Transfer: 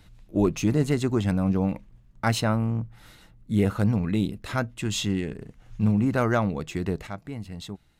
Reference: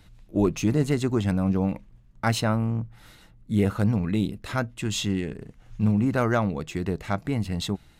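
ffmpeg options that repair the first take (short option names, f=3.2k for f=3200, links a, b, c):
-af "asetnsamples=n=441:p=0,asendcmd='7.07 volume volume 9dB',volume=0dB"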